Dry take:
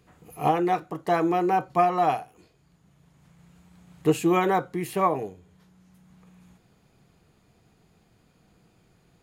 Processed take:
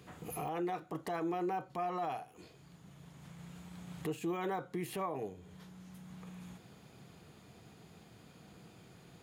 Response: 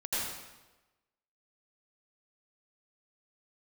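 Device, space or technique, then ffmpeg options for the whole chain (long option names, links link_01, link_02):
broadcast voice chain: -af "highpass=82,deesser=0.8,acompressor=threshold=-42dB:ratio=3,equalizer=frequency=3400:width_type=o:width=0.35:gain=3,alimiter=level_in=10dB:limit=-24dB:level=0:latency=1:release=27,volume=-10dB,volume=5dB"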